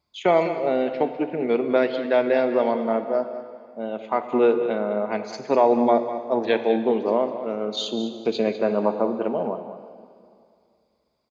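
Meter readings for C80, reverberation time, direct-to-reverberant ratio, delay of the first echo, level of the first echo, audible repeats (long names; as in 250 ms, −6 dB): 8.5 dB, 2.3 s, 7.5 dB, 201 ms, −12.0 dB, 1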